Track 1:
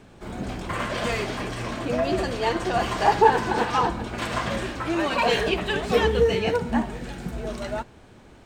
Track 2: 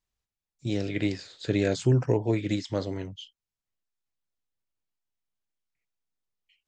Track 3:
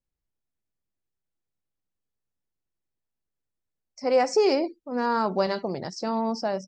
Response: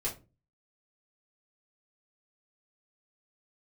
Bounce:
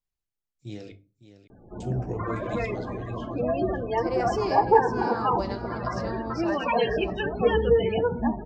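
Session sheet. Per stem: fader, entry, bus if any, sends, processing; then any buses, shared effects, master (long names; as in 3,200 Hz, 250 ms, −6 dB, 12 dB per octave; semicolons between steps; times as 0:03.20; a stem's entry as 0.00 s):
−2.0 dB, 1.50 s, send −19.5 dB, no echo send, parametric band 3,300 Hz −2.5 dB 2.1 octaves; spectral peaks only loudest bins 32
−12.5 dB, 0.00 s, muted 0:00.92–0:01.80, send −8 dB, echo send −11 dB, no processing
−8.0 dB, 0.00 s, no send, echo send −9 dB, de-essing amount 65%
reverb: on, RT60 0.30 s, pre-delay 3 ms
echo: repeating echo 557 ms, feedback 17%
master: no processing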